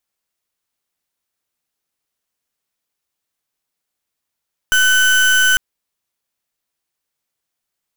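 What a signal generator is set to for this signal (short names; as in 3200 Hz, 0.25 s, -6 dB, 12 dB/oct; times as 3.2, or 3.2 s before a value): pulse 1510 Hz, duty 34% -12.5 dBFS 0.85 s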